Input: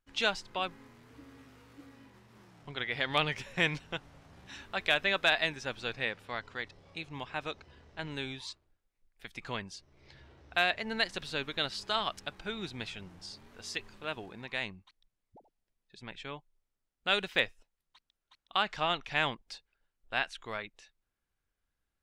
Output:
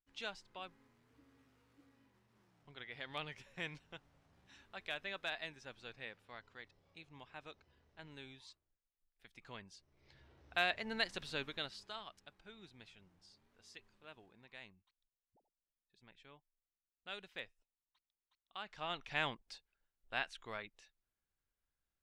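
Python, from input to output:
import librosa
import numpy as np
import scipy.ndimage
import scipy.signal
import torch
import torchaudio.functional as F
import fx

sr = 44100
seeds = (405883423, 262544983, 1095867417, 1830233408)

y = fx.gain(x, sr, db=fx.line((9.37, -15.0), (10.63, -6.0), (11.42, -6.0), (12.06, -18.5), (18.56, -18.5), (19.07, -7.0)))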